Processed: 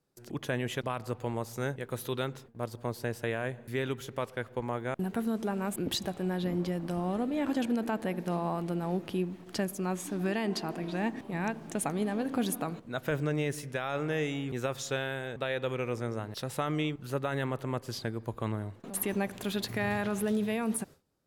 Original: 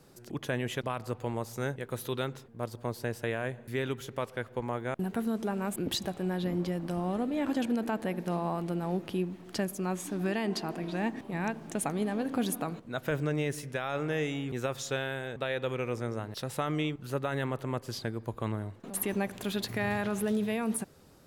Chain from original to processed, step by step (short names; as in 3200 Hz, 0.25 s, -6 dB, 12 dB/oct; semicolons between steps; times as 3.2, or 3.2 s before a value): gate with hold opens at -40 dBFS